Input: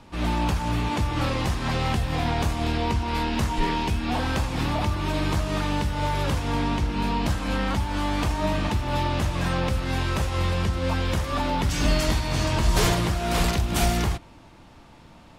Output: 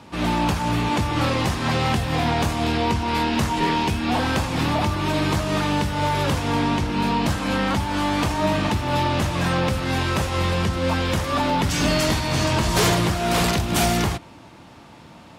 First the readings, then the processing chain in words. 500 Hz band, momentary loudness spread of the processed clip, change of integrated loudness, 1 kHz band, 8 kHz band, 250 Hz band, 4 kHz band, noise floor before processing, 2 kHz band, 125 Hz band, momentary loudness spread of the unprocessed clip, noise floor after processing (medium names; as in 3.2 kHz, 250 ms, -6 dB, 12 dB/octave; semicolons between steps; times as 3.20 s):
+4.5 dB, 3 LU, +3.5 dB, +5.0 dB, +4.5 dB, +4.5 dB, +4.5 dB, -49 dBFS, +5.0 dB, +2.0 dB, 3 LU, -45 dBFS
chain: high-pass 96 Hz 12 dB/octave; saturation -15.5 dBFS, distortion -24 dB; trim +5.5 dB